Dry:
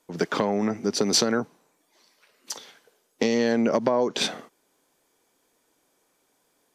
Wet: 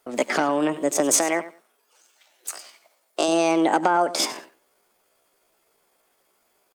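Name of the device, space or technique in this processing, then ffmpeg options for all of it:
chipmunk voice: -filter_complex "[0:a]asettb=1/sr,asplit=3[link_01][link_02][link_03];[link_01]atrim=end=1.194[link_04];[link_02]atrim=start=1.19:end=3.29,asetpts=PTS-STARTPTS,afade=type=in:duration=0.004:curve=qsin,afade=type=out:start_time=2.096:duration=0.004:curve=qsin,highpass=frequency=280:poles=1[link_05];[link_03]atrim=start=3.286[link_06];[link_04][link_05]acrossfade=duration=0.004:curve1=hsin:curve2=qsin[link_07];[link_07][link_06]acrossfade=duration=0.004:curve1=qsin:curve2=hsin,aecho=1:1:96|192:0.168|0.0285,asetrate=62367,aresample=44100,atempo=0.707107,volume=2.5dB"

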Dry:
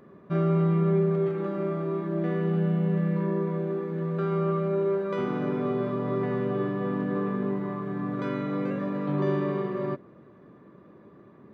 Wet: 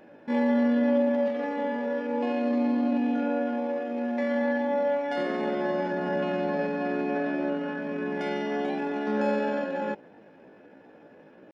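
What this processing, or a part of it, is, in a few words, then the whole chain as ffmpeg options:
chipmunk voice: -af "asetrate=64194,aresample=44100,atempo=0.686977"

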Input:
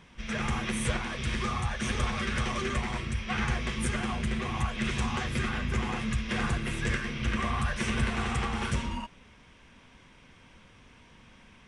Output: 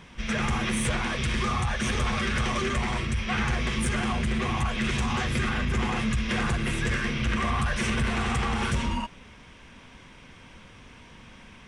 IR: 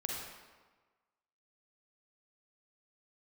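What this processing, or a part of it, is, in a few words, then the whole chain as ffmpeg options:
soft clipper into limiter: -af "asoftclip=type=tanh:threshold=-21dB,alimiter=level_in=1.5dB:limit=-24dB:level=0:latency=1:release=36,volume=-1.5dB,volume=6.5dB"

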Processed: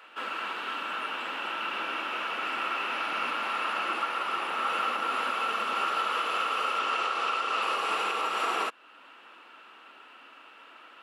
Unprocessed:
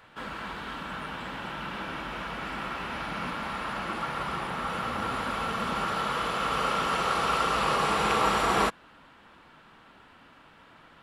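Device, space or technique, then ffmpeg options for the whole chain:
laptop speaker: -filter_complex "[0:a]highpass=frequency=300:width=0.5412,highpass=frequency=300:width=1.3066,equalizer=frequency=1300:width_type=o:width=0.29:gain=6.5,equalizer=frequency=2700:width_type=o:width=0.31:gain=11,alimiter=limit=-19dB:level=0:latency=1:release=452,asettb=1/sr,asplit=3[link_01][link_02][link_03];[link_01]atrim=end=6.794[link_04];[link_02]atrim=start=6.79:end=7.62,asetpts=PTS-STARTPTS,afade=type=in:duration=0.004:curve=qsin,afade=type=out:start_time=0.826:duration=0.004:curve=qsin,lowpass=8200[link_05];[link_03]atrim=start=7.616[link_06];[link_04][link_05]acrossfade=duration=0.004:curve1=hsin:curve2=qsin[link_07];[link_07][link_06]acrossfade=duration=0.004:curve1=qsin:curve2=hsin"

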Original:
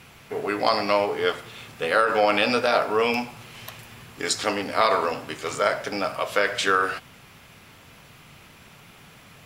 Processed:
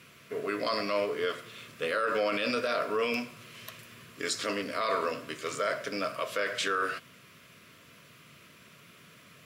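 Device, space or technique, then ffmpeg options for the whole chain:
PA system with an anti-feedback notch: -af "highpass=130,asuperstop=centerf=820:order=4:qfactor=2.7,alimiter=limit=-14.5dB:level=0:latency=1:release=12,volume=-5dB"

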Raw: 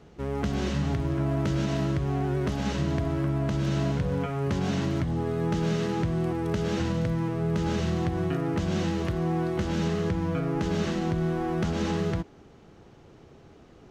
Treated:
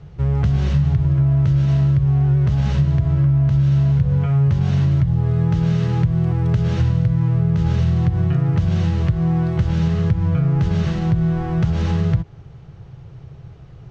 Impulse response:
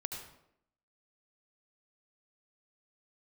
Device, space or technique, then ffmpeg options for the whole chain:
jukebox: -af "lowpass=5800,lowshelf=frequency=180:width_type=q:width=3:gain=10.5,acompressor=threshold=-16dB:ratio=6,volume=3dB"

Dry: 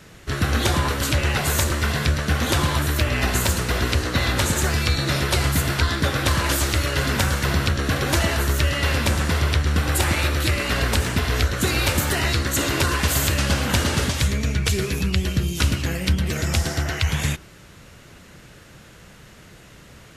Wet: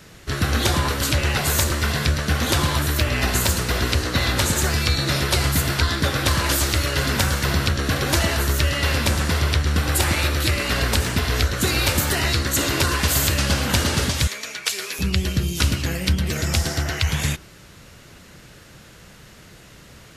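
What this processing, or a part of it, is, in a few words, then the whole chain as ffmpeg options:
presence and air boost: -filter_complex "[0:a]asettb=1/sr,asplit=3[link_01][link_02][link_03];[link_01]atrim=end=14.274[link_04];[link_02]atrim=start=14.27:end=14.99,asetpts=PTS-STARTPTS,afade=type=in:duration=0.004:curve=qsin,afade=type=out:start_time=0.716:duration=0.004:curve=qsin,highpass=720[link_05];[link_03]atrim=start=14.986[link_06];[link_04][link_05]acrossfade=duration=0.004:curve1=hsin:curve2=qsin[link_07];[link_07][link_06]acrossfade=duration=0.004:curve1=qsin:curve2=hsin,equalizer=frequency=4700:width_type=o:width=0.77:gain=3,highshelf=frequency=12000:gain=5.5"

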